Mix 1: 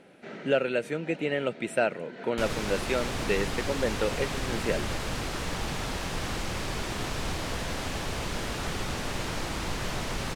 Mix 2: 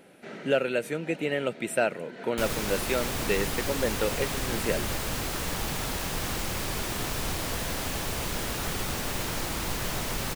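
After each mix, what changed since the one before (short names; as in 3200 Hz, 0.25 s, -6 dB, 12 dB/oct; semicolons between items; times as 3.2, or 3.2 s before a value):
master: remove air absorption 55 m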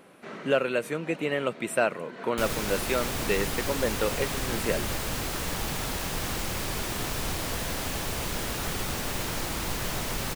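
speech: add bell 1100 Hz +15 dB 0.26 oct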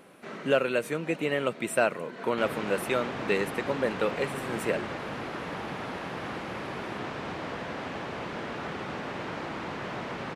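background: add BPF 170–2100 Hz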